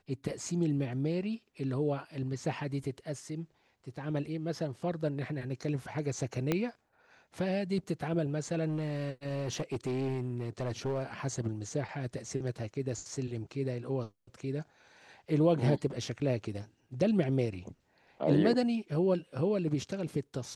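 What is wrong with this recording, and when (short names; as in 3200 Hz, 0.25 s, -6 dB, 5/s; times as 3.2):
6.52 pop -15 dBFS
8.68–11.14 clipped -29 dBFS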